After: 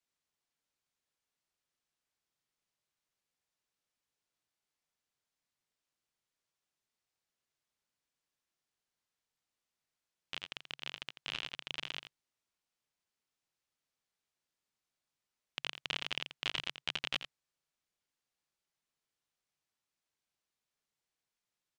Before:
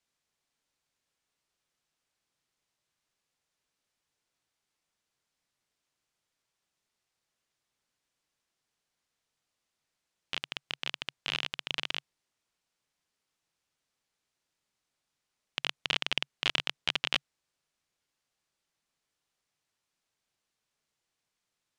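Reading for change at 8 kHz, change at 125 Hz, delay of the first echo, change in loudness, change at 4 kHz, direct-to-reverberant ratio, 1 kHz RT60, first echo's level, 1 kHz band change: −6.5 dB, −6.5 dB, 85 ms, −6.5 dB, −6.5 dB, no reverb audible, no reverb audible, −10.5 dB, −6.5 dB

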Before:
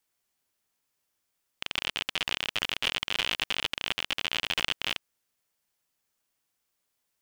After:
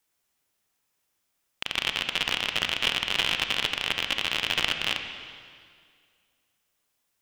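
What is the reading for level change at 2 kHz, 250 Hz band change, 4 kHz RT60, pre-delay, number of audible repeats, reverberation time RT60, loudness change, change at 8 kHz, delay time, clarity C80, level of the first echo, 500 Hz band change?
+4.0 dB, +4.0 dB, 2.0 s, 30 ms, no echo audible, 2.0 s, +3.5 dB, +3.0 dB, no echo audible, 7.5 dB, no echo audible, +4.0 dB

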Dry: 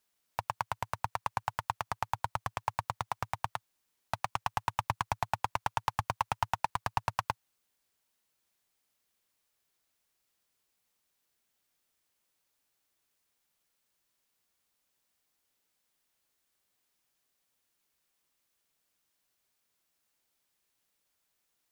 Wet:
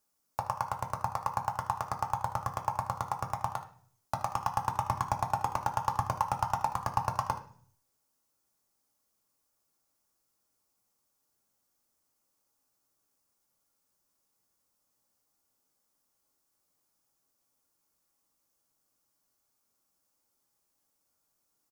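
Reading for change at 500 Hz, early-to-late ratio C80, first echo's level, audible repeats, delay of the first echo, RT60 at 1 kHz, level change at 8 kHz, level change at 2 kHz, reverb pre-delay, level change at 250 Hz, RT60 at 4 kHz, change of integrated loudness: +2.5 dB, 15.0 dB, −14.0 dB, 1, 76 ms, 0.45 s, +2.0 dB, −4.5 dB, 3 ms, +4.0 dB, 0.60 s, +2.0 dB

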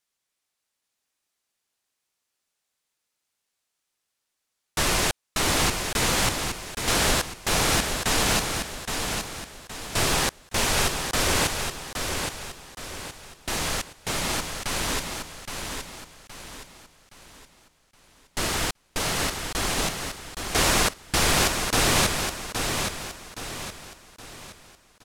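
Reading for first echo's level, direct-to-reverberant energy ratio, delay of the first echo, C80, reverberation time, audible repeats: −6.0 dB, no reverb audible, 819 ms, no reverb audible, no reverb audible, 4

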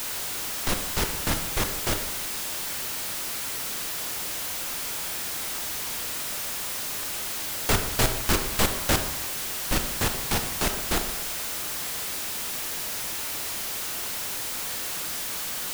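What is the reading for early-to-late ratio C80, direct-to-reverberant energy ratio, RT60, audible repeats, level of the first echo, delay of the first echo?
10.0 dB, 6.0 dB, 1.1 s, no echo audible, no echo audible, no echo audible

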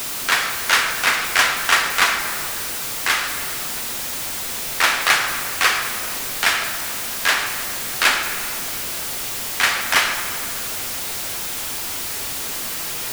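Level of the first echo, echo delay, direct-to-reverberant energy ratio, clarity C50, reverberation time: no echo audible, no echo audible, 4.0 dB, 6.5 dB, 2.9 s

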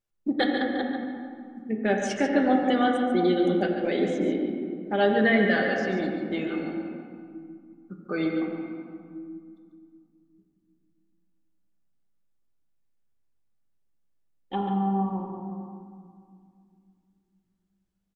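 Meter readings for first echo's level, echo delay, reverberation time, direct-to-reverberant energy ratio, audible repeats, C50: −9.0 dB, 142 ms, 2.3 s, 0.0 dB, 1, 2.0 dB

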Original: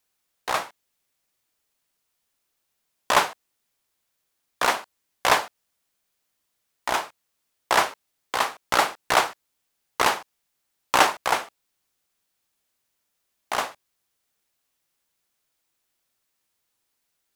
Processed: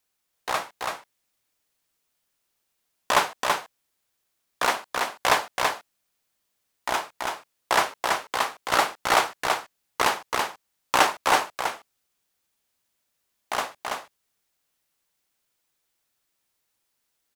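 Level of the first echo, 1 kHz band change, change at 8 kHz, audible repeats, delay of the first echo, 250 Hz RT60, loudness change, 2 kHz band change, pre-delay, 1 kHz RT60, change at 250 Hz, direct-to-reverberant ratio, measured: −3.5 dB, 0.0 dB, 0.0 dB, 1, 331 ms, no reverb audible, −1.5 dB, 0.0 dB, no reverb audible, no reverb audible, 0.0 dB, no reverb audible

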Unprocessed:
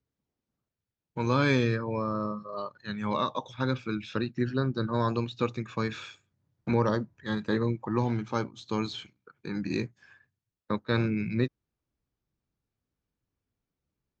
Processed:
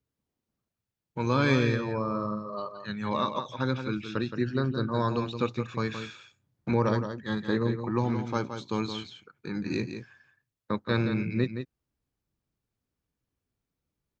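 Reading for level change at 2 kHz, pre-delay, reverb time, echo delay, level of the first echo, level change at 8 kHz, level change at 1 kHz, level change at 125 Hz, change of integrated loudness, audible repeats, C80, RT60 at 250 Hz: +0.5 dB, no reverb audible, no reverb audible, 170 ms, −8.5 dB, can't be measured, +0.5 dB, +0.5 dB, +0.5 dB, 1, no reverb audible, no reverb audible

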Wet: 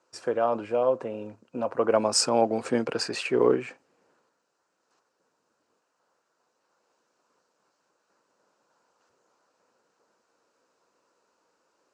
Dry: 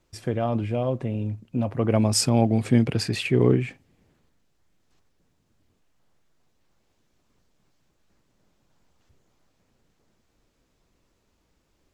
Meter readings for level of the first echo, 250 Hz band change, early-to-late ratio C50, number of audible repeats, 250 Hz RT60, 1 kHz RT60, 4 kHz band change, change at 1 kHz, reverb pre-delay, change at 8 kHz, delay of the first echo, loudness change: no echo audible, −7.5 dB, no reverb audible, no echo audible, no reverb audible, no reverb audible, −0.5 dB, +3.5 dB, no reverb audible, −0.5 dB, no echo audible, −2.5 dB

